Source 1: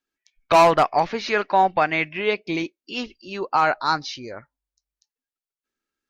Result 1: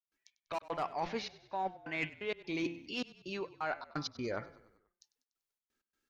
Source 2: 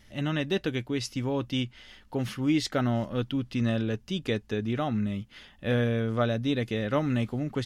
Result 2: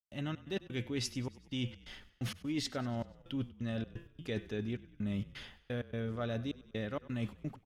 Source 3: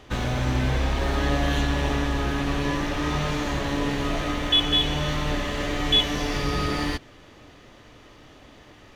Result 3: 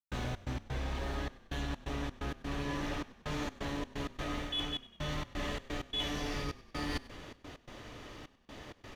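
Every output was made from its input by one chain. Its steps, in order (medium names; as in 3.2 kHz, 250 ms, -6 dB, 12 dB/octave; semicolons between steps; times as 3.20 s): de-hum 169.7 Hz, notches 21; reverse; compression 16:1, threshold -33 dBFS; reverse; trance gate ".xx.x.xxxxx..xx" 129 bpm -60 dB; saturation -23.5 dBFS; frequency-shifting echo 97 ms, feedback 55%, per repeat -31 Hz, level -18.5 dB; trim +1 dB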